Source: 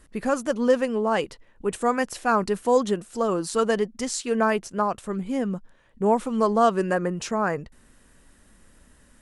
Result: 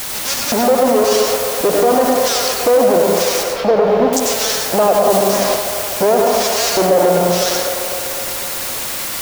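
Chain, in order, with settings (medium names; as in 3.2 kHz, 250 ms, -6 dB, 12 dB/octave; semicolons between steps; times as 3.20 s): local Wiener filter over 25 samples; 0.51–1.01 s: comb 3 ms, depth 44%; fuzz box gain 41 dB, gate -44 dBFS; LFO band-pass square 0.96 Hz 610–5800 Hz; word length cut 6-bit, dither triangular; 3.43–4.13 s: distance through air 280 m; feedback echo behind a band-pass 252 ms, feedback 65%, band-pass 810 Hz, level -10 dB; plate-style reverb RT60 0.83 s, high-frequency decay 0.5×, pre-delay 80 ms, DRR 1.5 dB; loudness maximiser +14.5 dB; 5.10–5.55 s: three bands compressed up and down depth 100%; trim -3 dB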